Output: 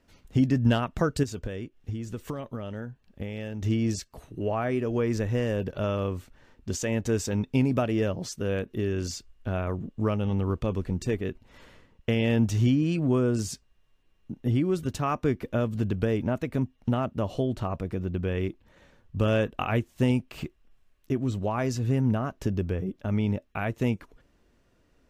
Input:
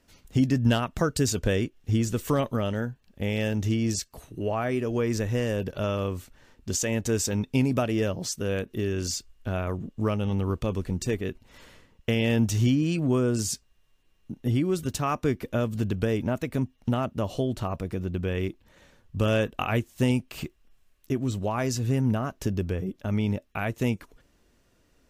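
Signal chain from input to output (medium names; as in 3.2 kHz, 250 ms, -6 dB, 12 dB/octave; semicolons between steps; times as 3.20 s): treble shelf 4.3 kHz -9.5 dB; 1.23–3.62 s: compression, threshold -31 dBFS, peak gain reduction 11.5 dB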